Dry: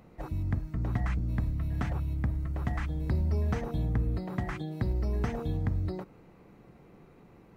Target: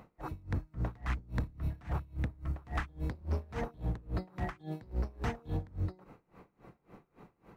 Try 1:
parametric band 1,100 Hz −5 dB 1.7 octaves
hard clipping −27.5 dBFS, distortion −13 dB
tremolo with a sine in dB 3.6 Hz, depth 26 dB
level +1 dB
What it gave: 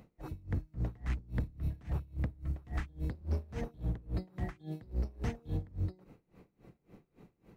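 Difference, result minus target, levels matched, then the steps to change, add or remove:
1,000 Hz band −7.5 dB
change: parametric band 1,100 Hz +6 dB 1.7 octaves

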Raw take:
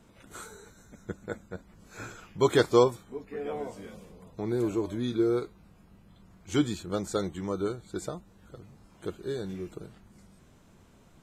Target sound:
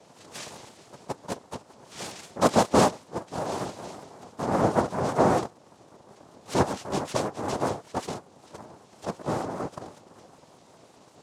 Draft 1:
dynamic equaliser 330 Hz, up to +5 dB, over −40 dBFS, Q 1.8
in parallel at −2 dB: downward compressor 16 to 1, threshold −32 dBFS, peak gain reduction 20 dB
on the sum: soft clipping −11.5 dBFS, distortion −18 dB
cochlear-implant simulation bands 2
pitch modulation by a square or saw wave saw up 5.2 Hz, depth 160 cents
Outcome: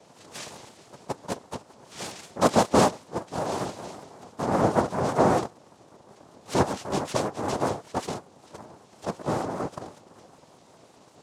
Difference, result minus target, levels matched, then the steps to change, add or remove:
downward compressor: peak gain reduction −6.5 dB
change: downward compressor 16 to 1, threshold −39 dBFS, peak gain reduction 26.5 dB

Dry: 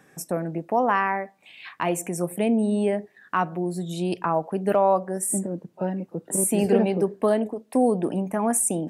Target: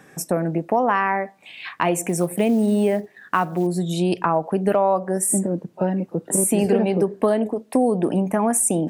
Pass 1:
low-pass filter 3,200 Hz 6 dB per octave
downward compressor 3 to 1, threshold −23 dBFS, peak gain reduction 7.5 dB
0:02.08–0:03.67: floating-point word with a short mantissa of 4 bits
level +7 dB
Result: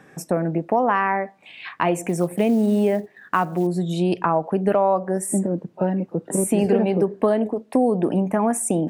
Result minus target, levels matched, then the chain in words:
8,000 Hz band −6.0 dB
low-pass filter 13,000 Hz 6 dB per octave
downward compressor 3 to 1, threshold −23 dBFS, peak gain reduction 7.5 dB
0:02.08–0:03.67: floating-point word with a short mantissa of 4 bits
level +7 dB

